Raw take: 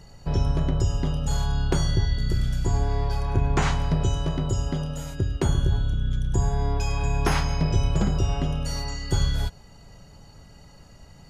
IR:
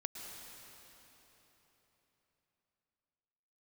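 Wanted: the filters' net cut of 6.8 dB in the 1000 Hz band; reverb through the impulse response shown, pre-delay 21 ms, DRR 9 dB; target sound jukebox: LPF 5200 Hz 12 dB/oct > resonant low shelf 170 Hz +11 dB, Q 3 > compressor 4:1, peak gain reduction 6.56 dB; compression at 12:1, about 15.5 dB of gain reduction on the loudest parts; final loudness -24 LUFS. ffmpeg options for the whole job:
-filter_complex "[0:a]equalizer=f=1k:t=o:g=-8.5,acompressor=threshold=-33dB:ratio=12,asplit=2[a][b];[1:a]atrim=start_sample=2205,adelay=21[c];[b][c]afir=irnorm=-1:irlink=0,volume=-8dB[d];[a][d]amix=inputs=2:normalize=0,lowpass=5.2k,lowshelf=f=170:t=q:w=3:g=11,acompressor=threshold=-23dB:ratio=4,volume=6dB"

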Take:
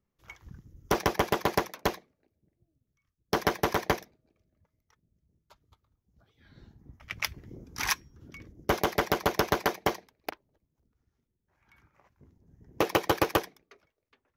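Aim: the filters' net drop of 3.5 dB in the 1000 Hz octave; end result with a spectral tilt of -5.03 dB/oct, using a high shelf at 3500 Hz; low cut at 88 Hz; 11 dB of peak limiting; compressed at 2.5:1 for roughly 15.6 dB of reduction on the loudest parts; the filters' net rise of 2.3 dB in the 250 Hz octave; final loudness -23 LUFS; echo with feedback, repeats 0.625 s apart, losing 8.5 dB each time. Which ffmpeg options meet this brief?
-af "highpass=88,equalizer=f=250:t=o:g=4,equalizer=f=1k:t=o:g=-4,highshelf=f=3.5k:g=-9,acompressor=threshold=-47dB:ratio=2.5,alimiter=level_in=10dB:limit=-24dB:level=0:latency=1,volume=-10dB,aecho=1:1:625|1250|1875|2500:0.376|0.143|0.0543|0.0206,volume=28.5dB"

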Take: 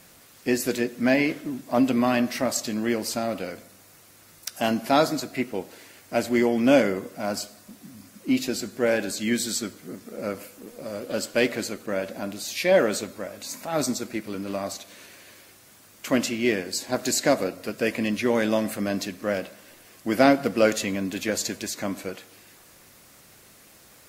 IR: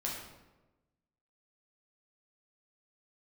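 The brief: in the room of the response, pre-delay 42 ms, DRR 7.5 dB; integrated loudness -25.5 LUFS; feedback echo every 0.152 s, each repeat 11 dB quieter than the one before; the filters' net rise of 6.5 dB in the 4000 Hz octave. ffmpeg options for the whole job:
-filter_complex "[0:a]equalizer=f=4k:t=o:g=8,aecho=1:1:152|304|456:0.282|0.0789|0.0221,asplit=2[a][b];[1:a]atrim=start_sample=2205,adelay=42[c];[b][c]afir=irnorm=-1:irlink=0,volume=-10dB[d];[a][d]amix=inputs=2:normalize=0,volume=-2.5dB"

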